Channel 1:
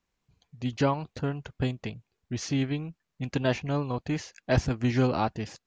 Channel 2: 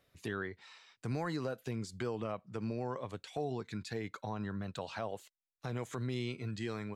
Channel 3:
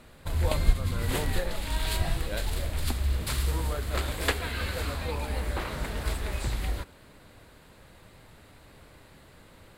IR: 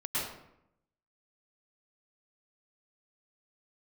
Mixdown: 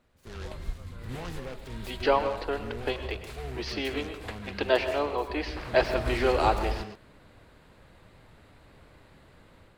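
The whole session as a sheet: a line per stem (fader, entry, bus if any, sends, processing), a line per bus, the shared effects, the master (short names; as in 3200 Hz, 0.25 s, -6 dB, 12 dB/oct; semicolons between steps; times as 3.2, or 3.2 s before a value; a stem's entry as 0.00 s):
0.0 dB, 1.25 s, send -14 dB, Chebyshev band-pass 340–4800 Hz, order 4
-6.5 dB, 0.00 s, send -17.5 dB, notch comb 300 Hz; transient shaper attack -4 dB, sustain +4 dB; noise-modulated delay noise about 1500 Hz, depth 0.11 ms
5.19 s -16 dB -> 5.98 s -5 dB, 0.00 s, no send, LPF 3500 Hz 6 dB/oct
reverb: on, RT60 0.80 s, pre-delay 99 ms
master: AGC gain up to 3.5 dB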